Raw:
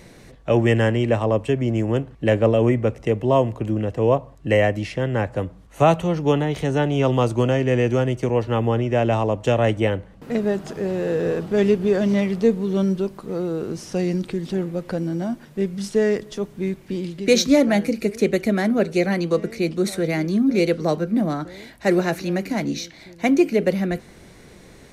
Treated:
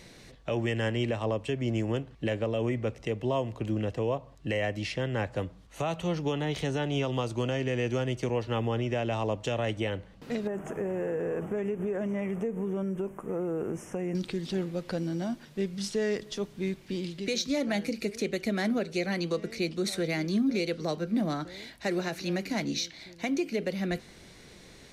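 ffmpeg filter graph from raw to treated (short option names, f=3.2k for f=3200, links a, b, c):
-filter_complex "[0:a]asettb=1/sr,asplit=3[a][b][c];[a]atrim=end=10.474[d];[b]atrim=start=10.47:end=14.15,asetpts=PTS-STARTPTS,afade=t=in:d=0.004:c=qsin,afade=t=out:st=3.676:d=0.004:c=qsin,equalizer=f=600:t=o:w=2.6:g=4.5,acompressor=threshold=-20dB:ratio=10:attack=3.2:release=140:knee=1:detection=peak,asuperstop=centerf=4300:order=4:qfactor=0.82[e];[c]atrim=start=14.146[f];[d][e]acrossfade=d=0.004:c1=hsin:c2=qsin[g];[g][f]acrossfade=d=0.004:c1=qsin:c2=hsin,equalizer=f=4.1k:w=0.69:g=8,alimiter=limit=-13dB:level=0:latency=1:release=211,volume=-7dB"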